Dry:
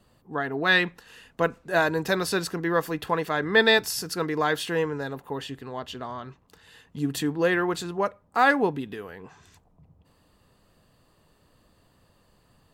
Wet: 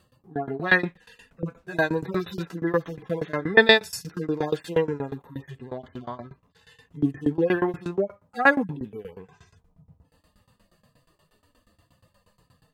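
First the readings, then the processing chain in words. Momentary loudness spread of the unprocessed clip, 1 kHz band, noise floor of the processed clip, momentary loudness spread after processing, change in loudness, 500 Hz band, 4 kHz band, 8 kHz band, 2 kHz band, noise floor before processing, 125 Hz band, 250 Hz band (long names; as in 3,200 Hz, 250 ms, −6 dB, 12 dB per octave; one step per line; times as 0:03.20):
16 LU, −3.0 dB, −70 dBFS, 18 LU, +1.0 dB, +0.5 dB, −0.5 dB, −8.5 dB, +0.5 dB, −64 dBFS, +1.5 dB, +1.5 dB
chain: harmonic-percussive split with one part muted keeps harmonic
shaped tremolo saw down 8.4 Hz, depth 95%
level +6.5 dB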